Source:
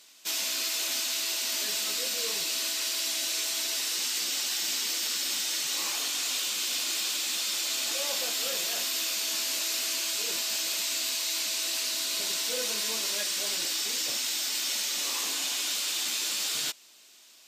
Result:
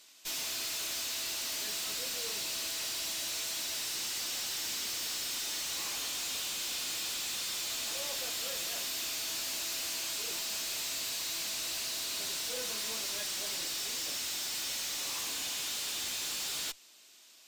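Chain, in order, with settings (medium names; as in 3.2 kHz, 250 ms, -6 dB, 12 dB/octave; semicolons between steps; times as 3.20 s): valve stage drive 33 dB, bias 0.6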